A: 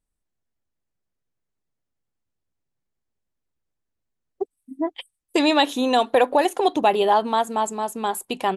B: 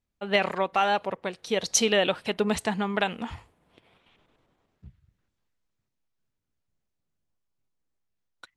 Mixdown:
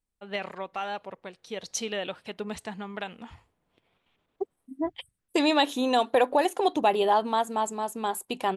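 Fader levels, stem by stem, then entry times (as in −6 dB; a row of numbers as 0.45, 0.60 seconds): −4.5, −9.5 decibels; 0.00, 0.00 seconds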